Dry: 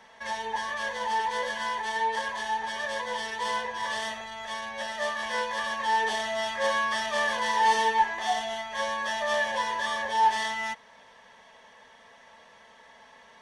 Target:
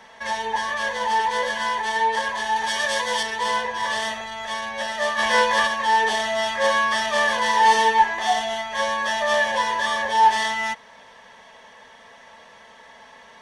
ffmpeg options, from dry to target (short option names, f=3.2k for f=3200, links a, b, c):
-filter_complex "[0:a]asettb=1/sr,asplit=3[a][b][c];[a]atrim=end=2.564[d];[b]atrim=start=2.56:end=3.23,asetpts=PTS-STARTPTS,afade=t=in:d=0.004:c=qsin,afade=t=out:st=0.666:d=0.004:c=qsin,highshelf=f=3.2k:g=10[e];[c]atrim=start=3.226[f];[d][e]acrossfade=d=0.004:c1=hsin:c2=qsin[g];[g][f]acrossfade=d=0.004:c1=qsin:c2=hsin,asplit=3[h][i][j];[h]afade=t=out:st=5.17:d=0.02[k];[i]acontrast=29,afade=t=in:st=5.17:d=0.02,afade=t=out:st=5.66:d=0.02[l];[j]afade=t=in:st=5.66:d=0.02[m];[k][l][m]amix=inputs=3:normalize=0,volume=6.5dB"